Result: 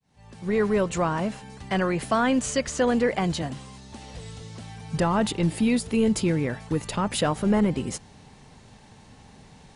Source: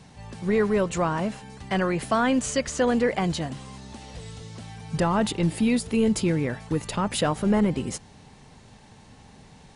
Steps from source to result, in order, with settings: fade-in on the opening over 0.66 s; 3.42–3.93 s: three bands expanded up and down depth 40%

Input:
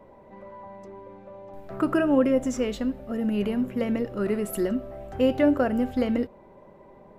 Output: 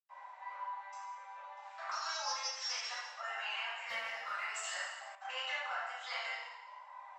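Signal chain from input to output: 1.82–2.78 s: sorted samples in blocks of 8 samples; steep low-pass 7.8 kHz 96 dB/octave; reverb removal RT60 1.1 s; steep high-pass 810 Hz 48 dB/octave; compression 12:1, threshold -44 dBFS, peak gain reduction 17.5 dB; 3.72–4.55 s: hard clipper -39.5 dBFS, distortion -28 dB; reverberation RT60 1.2 s, pre-delay 89 ms; 5.15–5.71 s: three bands expanded up and down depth 70%; trim +15.5 dB

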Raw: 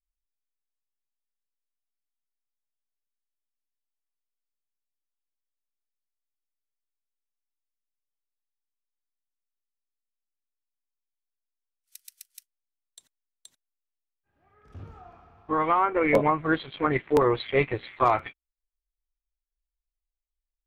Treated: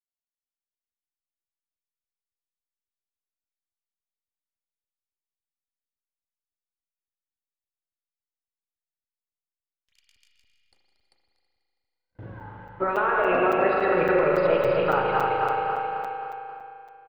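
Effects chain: backward echo that repeats 160 ms, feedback 74%, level -5 dB; gate -51 dBFS, range -39 dB; low-pass 2.2 kHz 12 dB/octave; peaking EQ 400 Hz +5 dB 2.4 oct; compression 5:1, threshold -21 dBFS, peak gain reduction 9.5 dB; on a send: feedback delay 197 ms, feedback 59%, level -13 dB; on the sum: spring tank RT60 3.1 s, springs 46 ms, chirp 50 ms, DRR 0.5 dB; tape speed +21%; crackling interface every 0.28 s, samples 256, zero, from 0.92 s

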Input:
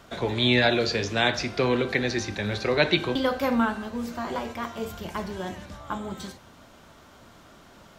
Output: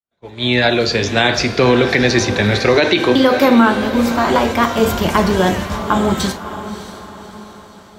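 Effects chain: fade-in on the opening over 2.38 s; 2.76–3.75 s: resonant low shelf 180 Hz -11 dB, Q 1.5; gain riding within 4 dB 2 s; expander -34 dBFS; echo that smears into a reverb 602 ms, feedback 48%, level -13 dB; loudness maximiser +16 dB; trim -1 dB

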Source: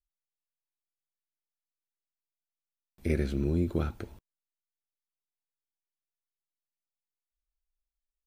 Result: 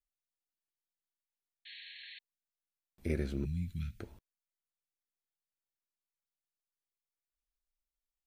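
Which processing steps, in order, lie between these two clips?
1.65–2.19 s: painted sound noise 1.6–4.4 kHz -45 dBFS; 3.45–4.00 s: Chebyshev band-stop 180–2000 Hz, order 3; trim -5.5 dB

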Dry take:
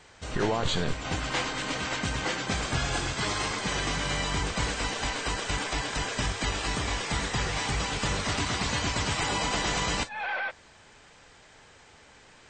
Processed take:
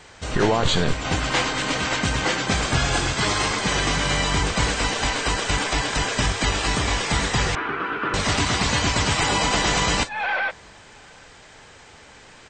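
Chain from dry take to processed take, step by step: 7.55–8.14 s: cabinet simulation 330–2200 Hz, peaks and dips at 350 Hz +9 dB, 560 Hz -9 dB, 810 Hz -9 dB, 1.4 kHz +9 dB, 2 kHz -7 dB; echo from a far wall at 130 m, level -29 dB; trim +7.5 dB

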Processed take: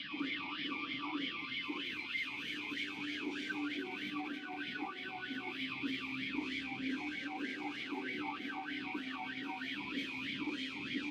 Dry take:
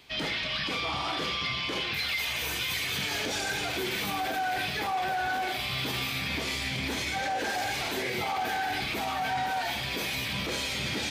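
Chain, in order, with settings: on a send: reverse echo 548 ms -4 dB; on the sum: peak limiter -22 dBFS, peak gain reduction 4 dB; talking filter i-u 3.2 Hz; trim +3.5 dB

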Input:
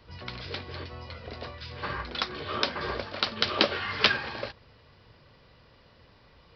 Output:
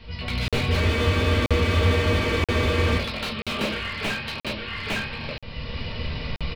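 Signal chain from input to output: high-order bell 3.4 kHz +10.5 dB; in parallel at -2.5 dB: compression, threshold -40 dBFS, peak gain reduction 30 dB; on the sum: tone controls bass +9 dB, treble -10 dB; on a send: delay 857 ms -8 dB; on the sum: simulated room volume 140 m³, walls furnished, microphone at 1.6 m; level rider gain up to 13.5 dB; spectral freeze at 0.83 s, 2.15 s; crackling interface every 0.98 s, samples 2048, zero, from 0.48 s; slew-rate limiter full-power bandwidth 160 Hz; trim -2.5 dB

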